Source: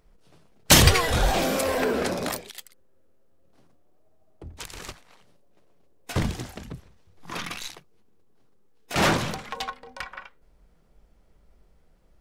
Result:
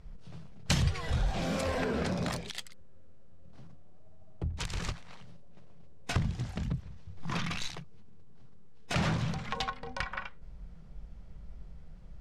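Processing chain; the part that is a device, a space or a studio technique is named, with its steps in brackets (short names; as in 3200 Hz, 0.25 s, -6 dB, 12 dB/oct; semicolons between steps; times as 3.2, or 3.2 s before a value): jukebox (LPF 6600 Hz 12 dB/oct; resonant low shelf 220 Hz +9 dB, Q 1.5; compressor 4:1, threshold -34 dBFS, peak gain reduction 25.5 dB); gain +3.5 dB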